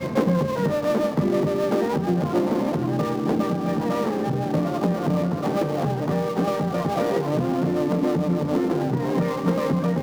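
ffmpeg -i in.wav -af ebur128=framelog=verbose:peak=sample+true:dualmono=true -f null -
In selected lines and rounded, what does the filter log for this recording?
Integrated loudness:
  I:         -20.3 LUFS
  Threshold: -30.3 LUFS
Loudness range:
  LRA:         1.1 LU
  Threshold: -40.5 LUFS
  LRA low:   -21.0 LUFS
  LRA high:  -20.0 LUFS
Sample peak:
  Peak:       -9.0 dBFS
True peak:
  Peak:       -9.0 dBFS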